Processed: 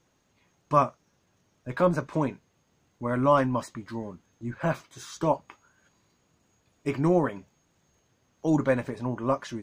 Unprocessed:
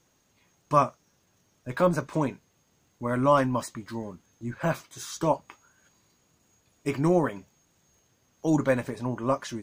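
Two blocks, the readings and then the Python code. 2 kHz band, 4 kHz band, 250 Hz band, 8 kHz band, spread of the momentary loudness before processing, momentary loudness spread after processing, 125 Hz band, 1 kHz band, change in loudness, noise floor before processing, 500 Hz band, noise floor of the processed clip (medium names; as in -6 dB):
-0.5 dB, -3.0 dB, 0.0 dB, -5.5 dB, 15 LU, 15 LU, 0.0 dB, -0.5 dB, 0.0 dB, -68 dBFS, 0.0 dB, -70 dBFS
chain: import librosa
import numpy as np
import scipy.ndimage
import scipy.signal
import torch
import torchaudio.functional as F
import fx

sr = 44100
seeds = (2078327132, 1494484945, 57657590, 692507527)

y = fx.lowpass(x, sr, hz=3900.0, slope=6)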